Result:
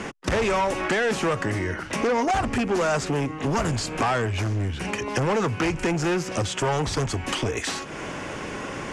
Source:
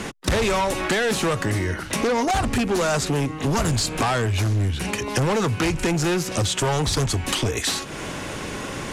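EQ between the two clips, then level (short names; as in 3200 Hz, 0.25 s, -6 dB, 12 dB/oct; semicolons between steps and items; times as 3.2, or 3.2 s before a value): air absorption 69 m; low shelf 170 Hz -6.5 dB; bell 3900 Hz -7.5 dB 0.47 oct; 0.0 dB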